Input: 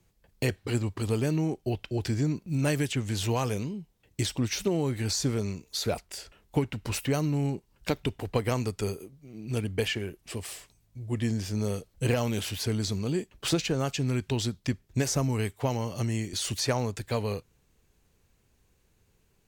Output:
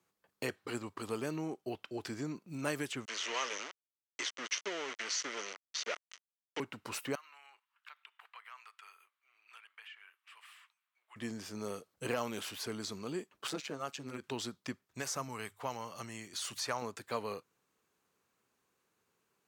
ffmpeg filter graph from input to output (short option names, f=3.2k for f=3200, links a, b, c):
-filter_complex "[0:a]asettb=1/sr,asplit=3[a][b][c];[a]atrim=end=3.054[d];[b]atrim=start=3.05:end=6.6,asetpts=PTS-STARTPTS,afade=t=in:d=0.004:c=qsin,afade=t=out:st=3.546:d=0.004:c=qsin,aeval=exprs='val(0)*gte(abs(val(0)),0.0335)':c=same,highpass=480,equalizer=f=790:t=q:w=4:g=-7,equalizer=f=1.1k:t=q:w=4:g=-3,equalizer=f=2k:t=q:w=4:g=9,equalizer=f=3k:t=q:w=4:g=9,equalizer=f=6.1k:t=q:w=4:g=10,lowpass=f=6.4k:w=0.5412,lowpass=f=6.4k:w=1.3066[e];[c]atrim=start=6.596[f];[d][e]acrossfade=d=0.004:c1=hsin:c2=qsin[g];[g][f]acrossfade=d=0.004:c1=qsin:c2=hsin,asettb=1/sr,asplit=3[h][i][j];[h]atrim=end=7.154[k];[i]atrim=start=7.15:end=11.16,asetpts=PTS-STARTPTS,afade=t=in:d=0.004:c=qsin,afade=t=out:st=4.006:d=0.004:c=qsin,highpass=f=1.1k:w=0.5412,highpass=f=1.1k:w=1.3066,highshelf=f=4k:t=q:w=1.5:g=-10.5,acompressor=threshold=-49dB:ratio=2.5:attack=3.2:release=140:knee=1:detection=peak[l];[j]atrim=start=11.156[m];[k][l]acrossfade=d=0.004:c1=hsin:c2=qsin[n];[n][m]acrossfade=d=0.004:c1=qsin:c2=hsin,asettb=1/sr,asplit=3[o][p][q];[o]atrim=end=13.474[r];[p]atrim=start=13.47:end=14.24,asetpts=PTS-STARTPTS,afade=t=in:d=0.004:c=qsin,afade=t=out:st=0.766:d=0.004:c=qsin,tremolo=f=140:d=0.824,asoftclip=type=hard:threshold=-21.5dB[s];[q]atrim=start=14.236[t];[r][s]acrossfade=d=0.004:c1=hsin:c2=qsin[u];[u][t]acrossfade=d=0.004:c1=qsin:c2=hsin,asettb=1/sr,asplit=3[v][w][x];[v]atrim=end=14.844[y];[w]atrim=start=14.84:end=16.82,asetpts=PTS-STARTPTS,afade=t=in:d=0.004:c=qsin,afade=t=out:st=1.976:d=0.004:c=qsin,equalizer=f=320:w=0.84:g=-7,bandreject=f=50:t=h:w=6,bandreject=f=100:t=h:w=6,bandreject=f=150:t=h:w=6[z];[x]atrim=start=16.816[aa];[y][z]acrossfade=d=0.004:c1=hsin:c2=qsin[ab];[ab][aa]acrossfade=d=0.004:c1=qsin:c2=hsin,highpass=240,equalizer=f=1.2k:w=1.8:g=9,volume=-8dB"